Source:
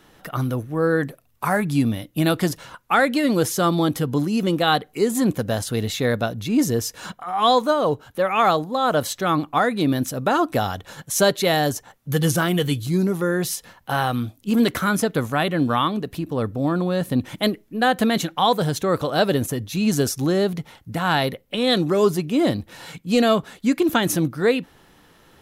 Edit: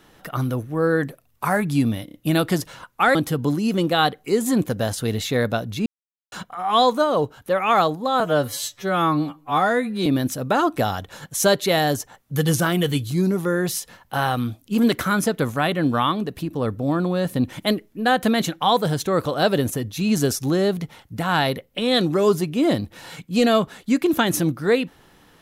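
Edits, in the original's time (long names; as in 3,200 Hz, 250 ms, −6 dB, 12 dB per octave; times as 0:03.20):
0:02.05: stutter 0.03 s, 4 plays
0:03.06–0:03.84: remove
0:06.55–0:07.01: silence
0:08.89–0:09.82: time-stretch 2×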